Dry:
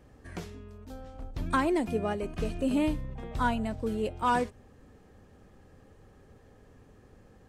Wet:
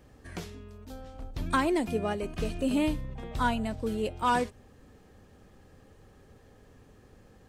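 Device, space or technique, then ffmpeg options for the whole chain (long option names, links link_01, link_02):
presence and air boost: -af "equalizer=frequency=3800:width_type=o:width=1.5:gain=3.5,highshelf=frequency=10000:gain=6.5"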